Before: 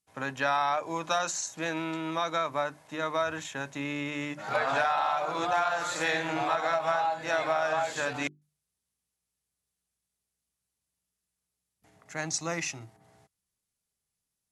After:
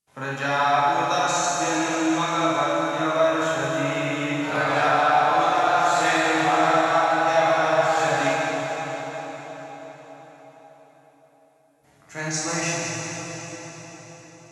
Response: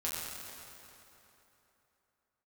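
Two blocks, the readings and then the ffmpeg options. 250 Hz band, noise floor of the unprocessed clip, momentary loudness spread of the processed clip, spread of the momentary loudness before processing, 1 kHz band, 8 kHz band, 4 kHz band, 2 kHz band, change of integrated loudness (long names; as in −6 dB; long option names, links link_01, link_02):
+10.0 dB, below −85 dBFS, 16 LU, 8 LU, +9.0 dB, +8.0 dB, +8.0 dB, +8.0 dB, +8.0 dB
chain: -filter_complex "[1:a]atrim=start_sample=2205,asetrate=25578,aresample=44100[link_01];[0:a][link_01]afir=irnorm=-1:irlink=0"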